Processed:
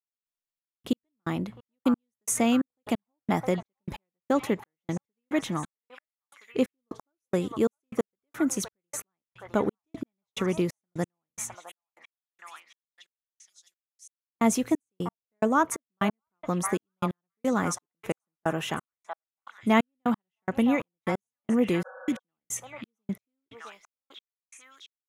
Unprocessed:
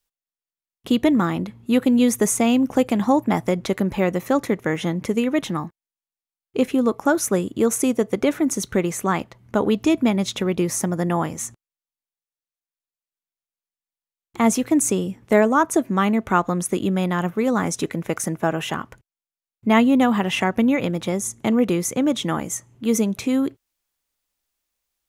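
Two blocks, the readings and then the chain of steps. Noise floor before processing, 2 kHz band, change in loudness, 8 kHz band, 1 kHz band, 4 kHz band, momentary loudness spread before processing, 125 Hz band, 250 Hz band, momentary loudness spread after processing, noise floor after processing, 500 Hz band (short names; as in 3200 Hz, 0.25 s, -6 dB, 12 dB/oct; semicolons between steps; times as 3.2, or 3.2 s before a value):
under -85 dBFS, -8.0 dB, -8.5 dB, -9.0 dB, -7.5 dB, -9.5 dB, 8 LU, -9.0 dB, -9.0 dB, 17 LU, under -85 dBFS, -9.0 dB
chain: delay with a stepping band-pass 0.66 s, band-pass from 1000 Hz, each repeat 0.7 oct, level -6 dB; step gate "...xxxx...x." 178 bpm -60 dB; spectral repair 21.88–22.16, 480–1700 Hz before; gain -5 dB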